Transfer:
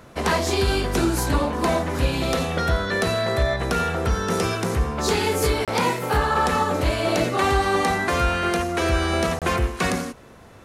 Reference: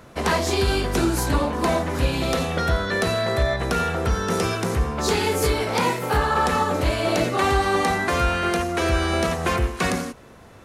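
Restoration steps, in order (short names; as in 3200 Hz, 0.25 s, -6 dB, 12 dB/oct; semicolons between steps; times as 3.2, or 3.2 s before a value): interpolate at 5.65/9.39, 27 ms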